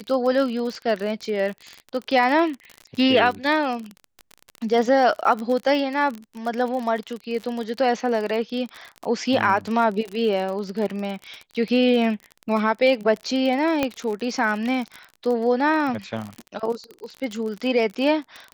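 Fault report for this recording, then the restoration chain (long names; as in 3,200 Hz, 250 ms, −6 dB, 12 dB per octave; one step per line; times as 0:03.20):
surface crackle 39 per second −27 dBFS
0:13.83: click −8 dBFS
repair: click removal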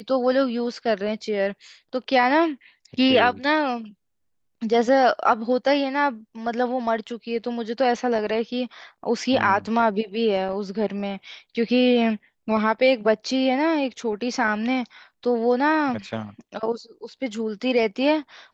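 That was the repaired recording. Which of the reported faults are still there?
none of them is left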